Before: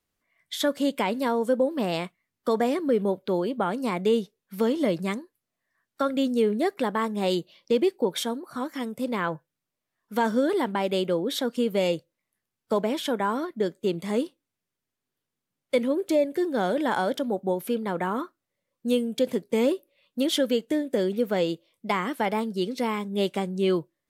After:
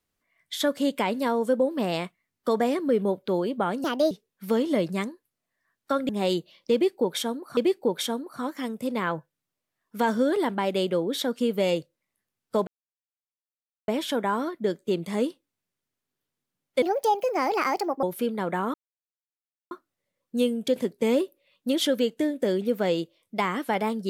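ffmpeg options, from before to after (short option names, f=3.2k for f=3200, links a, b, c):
-filter_complex "[0:a]asplit=9[a][b][c][d][e][f][g][h][i];[a]atrim=end=3.844[j];[b]atrim=start=3.84:end=4.21,asetpts=PTS-STARTPTS,asetrate=60417,aresample=44100,atrim=end_sample=11910,asetpts=PTS-STARTPTS[k];[c]atrim=start=4.206:end=6.192[l];[d]atrim=start=7.098:end=8.582[m];[e]atrim=start=7.738:end=12.84,asetpts=PTS-STARTPTS,afade=t=out:st=5.098:d=0.004:c=hsin,apad=pad_dur=1.21[n];[f]atrim=start=12.84:end=15.784,asetpts=PTS-STARTPTS,afade=t=in:d=0.004:c=hsin[o];[g]atrim=start=15.78:end=17.51,asetpts=PTS-STARTPTS,asetrate=63063,aresample=44100[p];[h]atrim=start=17.506:end=18.22,asetpts=PTS-STARTPTS,afade=t=out:st=0.71:d=0.004:c=hsin,apad=pad_dur=0.97[q];[i]atrim=start=18.22,asetpts=PTS-STARTPTS,afade=t=in:d=0.004:c=hsin[r];[j][k]acrossfade=d=0.004:c1=hsin:c2=hsin[s];[s][l]acrossfade=d=0.004:c1=hsin:c2=hsin[t];[t][m]acrossfade=d=0.004:c1=hsin:c2=hsin[u];[n][o]concat=n=2:v=0:a=1[v];[u][v]acrossfade=d=0.004:c1=hsin:c2=hsin[w];[w][p]acrossfade=d=0.004:c1=hsin:c2=hsin[x];[q][r]concat=n=2:v=0:a=1[y];[x][y]acrossfade=d=0.004:c1=hsin:c2=hsin"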